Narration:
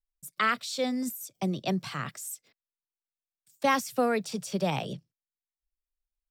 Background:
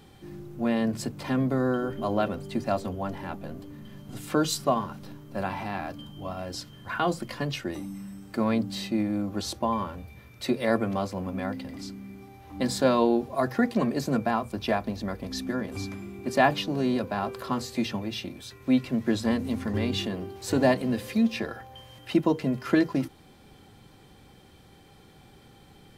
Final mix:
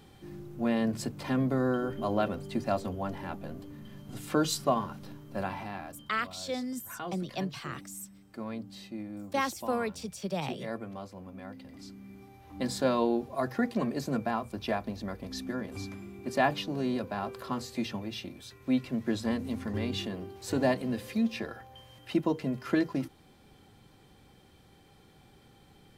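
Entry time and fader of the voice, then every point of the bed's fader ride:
5.70 s, -5.0 dB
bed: 5.37 s -2.5 dB
6.27 s -13 dB
11.43 s -13 dB
12.17 s -5 dB

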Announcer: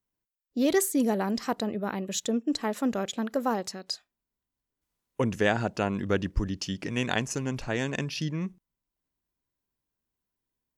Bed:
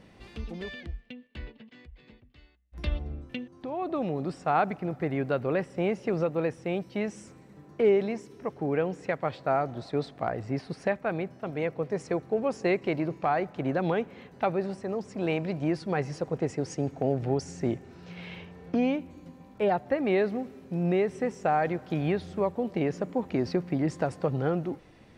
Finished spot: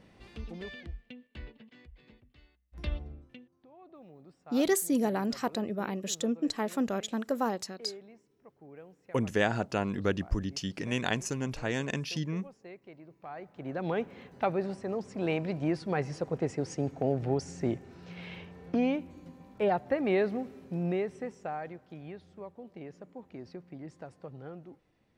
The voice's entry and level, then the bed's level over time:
3.95 s, -2.5 dB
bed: 2.93 s -4 dB
3.69 s -22.5 dB
13.06 s -22.5 dB
14.03 s -2 dB
20.64 s -2 dB
21.99 s -17 dB

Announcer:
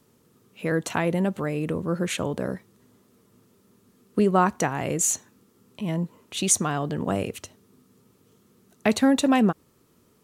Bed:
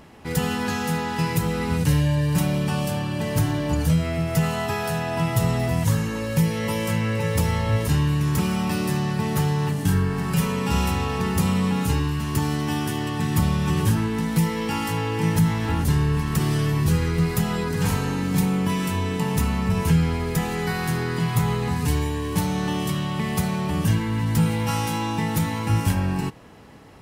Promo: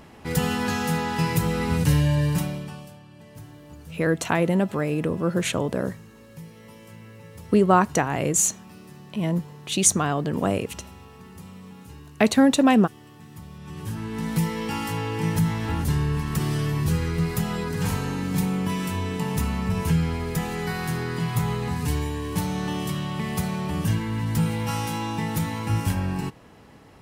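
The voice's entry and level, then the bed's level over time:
3.35 s, +2.5 dB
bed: 2.27 s 0 dB
2.99 s -21.5 dB
13.48 s -21.5 dB
14.27 s -3 dB

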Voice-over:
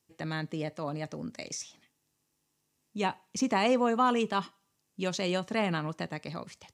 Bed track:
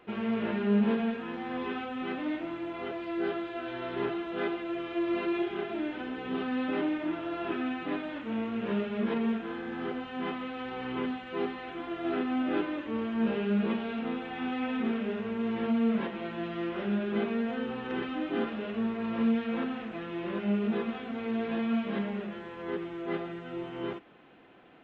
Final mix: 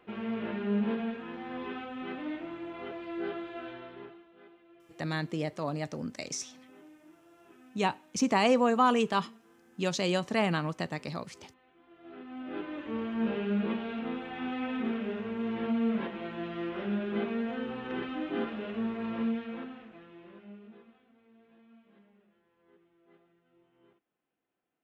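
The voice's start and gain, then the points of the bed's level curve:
4.80 s, +1.5 dB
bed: 3.65 s -4 dB
4.35 s -24.5 dB
11.78 s -24.5 dB
12.88 s -2 dB
19.09 s -2 dB
21.27 s -30 dB

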